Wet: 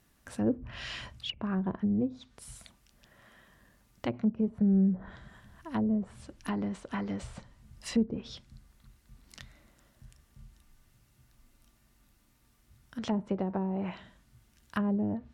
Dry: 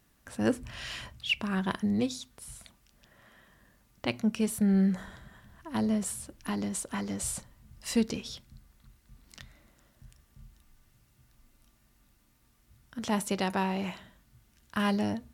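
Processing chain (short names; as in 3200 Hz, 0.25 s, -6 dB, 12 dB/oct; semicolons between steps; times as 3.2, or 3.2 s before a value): treble ducked by the level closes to 490 Hz, closed at -25 dBFS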